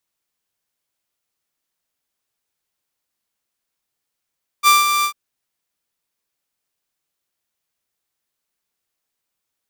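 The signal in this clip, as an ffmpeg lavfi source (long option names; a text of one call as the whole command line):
ffmpeg -f lavfi -i "aevalsrc='0.531*(2*mod(1180*t,1)-1)':duration=0.496:sample_rate=44100,afade=type=in:duration=0.044,afade=type=out:start_time=0.044:duration=0.172:silence=0.422,afade=type=out:start_time=0.41:duration=0.086" out.wav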